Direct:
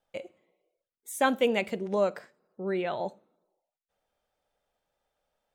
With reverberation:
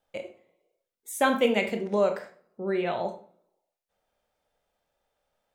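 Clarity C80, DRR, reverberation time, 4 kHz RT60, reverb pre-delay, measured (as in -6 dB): 15.0 dB, 5.0 dB, 0.45 s, 0.30 s, 21 ms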